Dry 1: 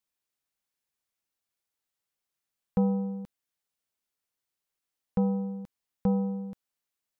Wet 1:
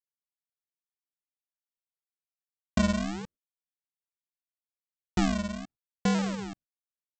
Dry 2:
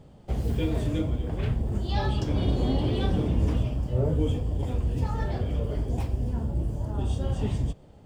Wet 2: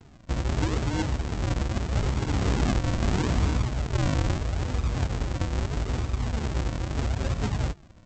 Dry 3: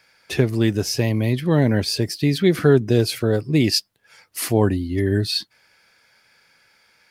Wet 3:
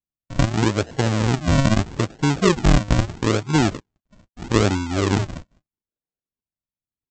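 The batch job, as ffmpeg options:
ffmpeg -i in.wav -af "lowpass=frequency=3500:width=0.5412,lowpass=frequency=3500:width=1.3066,agate=range=-40dB:threshold=-53dB:ratio=16:detection=peak,aresample=16000,acrusher=samples=26:mix=1:aa=0.000001:lfo=1:lforange=26:lforate=0.78,aresample=44100" out.wav

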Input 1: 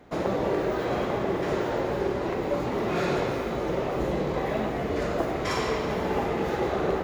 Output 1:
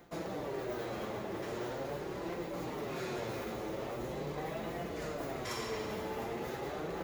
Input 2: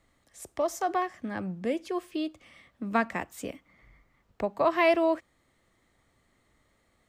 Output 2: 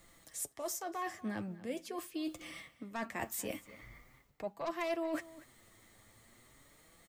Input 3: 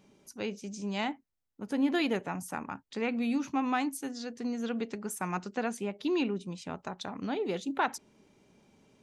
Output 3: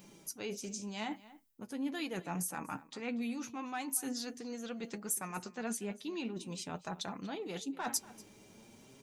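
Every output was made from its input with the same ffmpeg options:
ffmpeg -i in.wav -filter_complex "[0:a]aeval=exprs='0.251*(cos(1*acos(clip(val(0)/0.251,-1,1)))-cos(1*PI/2))+0.0398*(cos(5*acos(clip(val(0)/0.251,-1,1)))-cos(5*PI/2))+0.0158*(cos(7*acos(clip(val(0)/0.251,-1,1)))-cos(7*PI/2))':channel_layout=same,areverse,acompressor=threshold=-39dB:ratio=8,areverse,aemphasis=mode=production:type=50kf,flanger=delay=5.8:depth=3.6:regen=41:speed=0.42:shape=sinusoidal,asplit=2[link_01][link_02];[link_02]adelay=239.1,volume=-18dB,highshelf=frequency=4000:gain=-5.38[link_03];[link_01][link_03]amix=inputs=2:normalize=0,volume=5.5dB" out.wav

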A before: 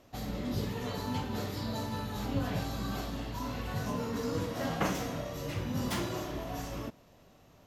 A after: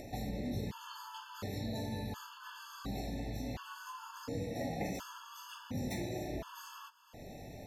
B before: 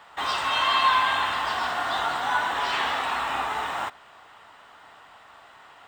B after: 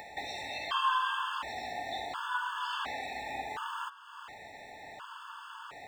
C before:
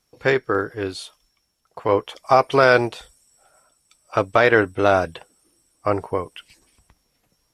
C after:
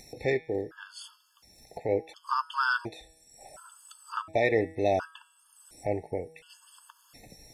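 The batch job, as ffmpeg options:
ffmpeg -i in.wav -af "bandreject=frequency=160.9:width_type=h:width=4,bandreject=frequency=321.8:width_type=h:width=4,bandreject=frequency=482.7:width_type=h:width=4,bandreject=frequency=643.6:width_type=h:width=4,bandreject=frequency=804.5:width_type=h:width=4,bandreject=frequency=965.4:width_type=h:width=4,bandreject=frequency=1126.3:width_type=h:width=4,bandreject=frequency=1287.2:width_type=h:width=4,bandreject=frequency=1448.1:width_type=h:width=4,bandreject=frequency=1609:width_type=h:width=4,bandreject=frequency=1769.9:width_type=h:width=4,bandreject=frequency=1930.8:width_type=h:width=4,bandreject=frequency=2091.7:width_type=h:width=4,bandreject=frequency=2252.6:width_type=h:width=4,bandreject=frequency=2413.5:width_type=h:width=4,bandreject=frequency=2574.4:width_type=h:width=4,bandreject=frequency=2735.3:width_type=h:width=4,bandreject=frequency=2896.2:width_type=h:width=4,bandreject=frequency=3057.1:width_type=h:width=4,bandreject=frequency=3218:width_type=h:width=4,bandreject=frequency=3378.9:width_type=h:width=4,bandreject=frequency=3539.8:width_type=h:width=4,bandreject=frequency=3700.7:width_type=h:width=4,bandreject=frequency=3861.6:width_type=h:width=4,bandreject=frequency=4022.5:width_type=h:width=4,bandreject=frequency=4183.4:width_type=h:width=4,bandreject=frequency=4344.3:width_type=h:width=4,bandreject=frequency=4505.2:width_type=h:width=4,bandreject=frequency=4666.1:width_type=h:width=4,bandreject=frequency=4827:width_type=h:width=4,bandreject=frequency=4987.9:width_type=h:width=4,bandreject=frequency=5148.8:width_type=h:width=4,acompressor=mode=upward:threshold=-22dB:ratio=2.5,afftfilt=real='re*gt(sin(2*PI*0.7*pts/sr)*(1-2*mod(floor(b*sr/1024/880),2)),0)':imag='im*gt(sin(2*PI*0.7*pts/sr)*(1-2*mod(floor(b*sr/1024/880),2)),0)':win_size=1024:overlap=0.75,volume=-8dB" out.wav

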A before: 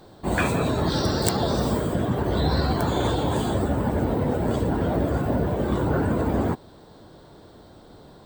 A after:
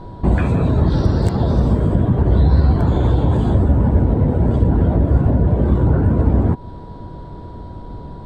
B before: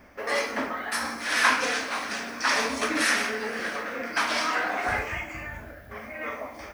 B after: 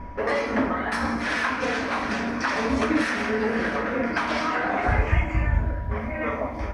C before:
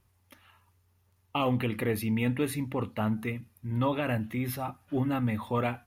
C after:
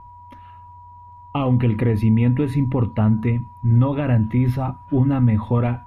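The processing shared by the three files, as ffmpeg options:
ffmpeg -i in.wav -af "acompressor=threshold=-27dB:ratio=6,aeval=exprs='val(0)+0.00447*sin(2*PI*970*n/s)':channel_layout=same,aemphasis=mode=reproduction:type=riaa,volume=6dB" out.wav

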